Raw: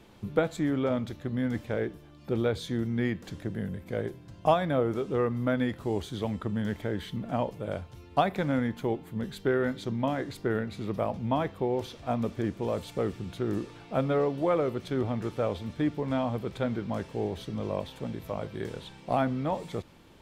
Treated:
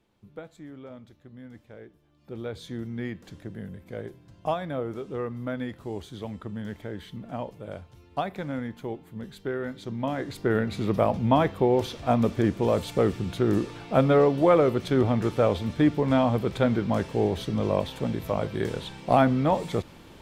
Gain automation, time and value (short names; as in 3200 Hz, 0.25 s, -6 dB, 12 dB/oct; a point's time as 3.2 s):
1.92 s -15.5 dB
2.66 s -4.5 dB
9.69 s -4.5 dB
10.73 s +7 dB